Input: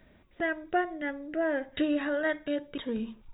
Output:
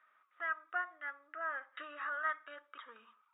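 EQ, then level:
four-pole ladder band-pass 1,300 Hz, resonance 85%
+4.0 dB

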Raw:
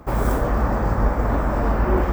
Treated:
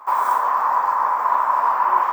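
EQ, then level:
high-pass with resonance 1,000 Hz, resonance Q 11
−2.5 dB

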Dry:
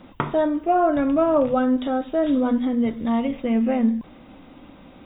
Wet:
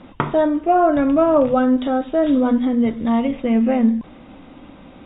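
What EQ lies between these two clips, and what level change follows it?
high-frequency loss of the air 60 metres
+4.0 dB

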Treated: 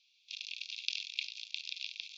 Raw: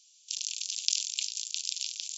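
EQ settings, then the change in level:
low-pass with resonance 2,900 Hz, resonance Q 7.3
high-frequency loss of the air 100 metres
phaser with its sweep stopped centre 2,000 Hz, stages 8
0.0 dB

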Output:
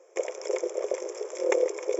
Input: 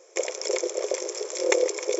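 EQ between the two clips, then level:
high-pass filter 320 Hz
high-shelf EQ 2,000 Hz −11 dB
parametric band 4,200 Hz −15 dB 0.28 octaves
0.0 dB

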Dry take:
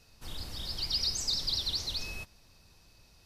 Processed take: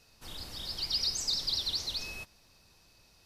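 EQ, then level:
low-shelf EQ 160 Hz −7 dB
0.0 dB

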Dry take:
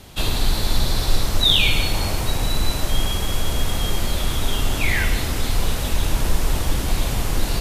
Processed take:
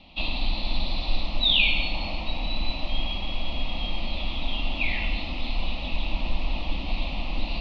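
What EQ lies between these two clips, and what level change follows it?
elliptic low-pass filter 4,200 Hz, stop band 60 dB
parametric band 2,600 Hz +12.5 dB 0.4 octaves
phaser with its sweep stopped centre 420 Hz, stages 6
−4.5 dB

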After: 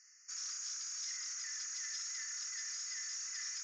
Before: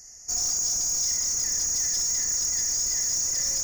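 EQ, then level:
Butterworth high-pass 1,300 Hz 48 dB per octave
head-to-tape spacing loss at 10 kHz 40 dB
high-shelf EQ 3,200 Hz +8 dB
+2.0 dB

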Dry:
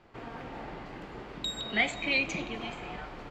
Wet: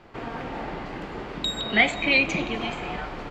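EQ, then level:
mains-hum notches 60/120 Hz
dynamic equaliser 6,600 Hz, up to −4 dB, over −45 dBFS, Q 0.91
high-shelf EQ 9,900 Hz −4.5 dB
+8.5 dB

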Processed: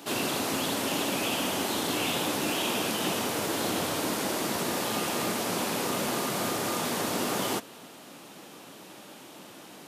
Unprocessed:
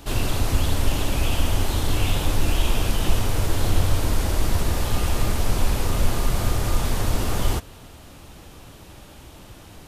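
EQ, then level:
high-pass filter 190 Hz 24 dB per octave
0.0 dB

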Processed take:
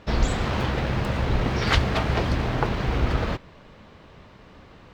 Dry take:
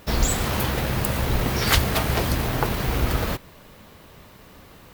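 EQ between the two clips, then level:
high-frequency loss of the air 150 metres
0.0 dB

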